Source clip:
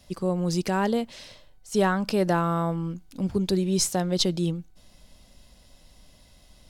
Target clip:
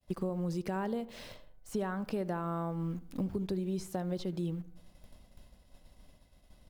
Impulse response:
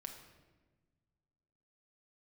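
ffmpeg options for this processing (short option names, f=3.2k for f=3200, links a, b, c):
-filter_complex "[0:a]agate=range=-33dB:threshold=-47dB:ratio=3:detection=peak,asplit=2[a][b];[b]acrusher=bits=6:mix=0:aa=0.000001,volume=-11.5dB[c];[a][c]amix=inputs=2:normalize=0,acompressor=threshold=-31dB:ratio=10,equalizer=f=5.8k:t=o:w=2.2:g=-9,asplit=2[d][e];[e]adelay=74,lowpass=f=1.4k:p=1,volume=-16.5dB,asplit=2[f][g];[g]adelay=74,lowpass=f=1.4k:p=1,volume=0.52,asplit=2[h][i];[i]adelay=74,lowpass=f=1.4k:p=1,volume=0.52,asplit=2[j][k];[k]adelay=74,lowpass=f=1.4k:p=1,volume=0.52,asplit=2[l][m];[m]adelay=74,lowpass=f=1.4k:p=1,volume=0.52[n];[f][h][j][l][n]amix=inputs=5:normalize=0[o];[d][o]amix=inputs=2:normalize=0,acrossover=split=2800[p][q];[q]acompressor=threshold=-45dB:ratio=4:attack=1:release=60[r];[p][r]amix=inputs=2:normalize=0"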